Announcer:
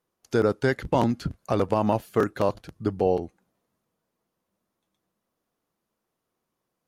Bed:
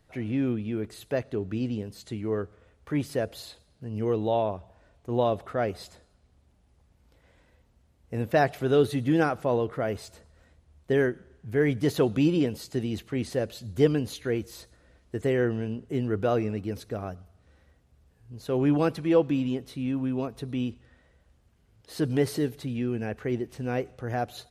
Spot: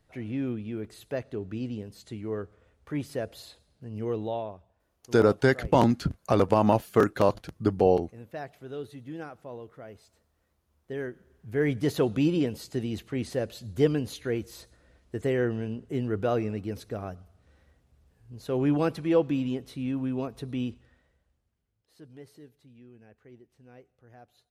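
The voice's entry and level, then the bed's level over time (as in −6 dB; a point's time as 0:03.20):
4.80 s, +1.5 dB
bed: 0:04.20 −4 dB
0:04.84 −16 dB
0:10.63 −16 dB
0:11.66 −1.5 dB
0:20.74 −1.5 dB
0:22.00 −23 dB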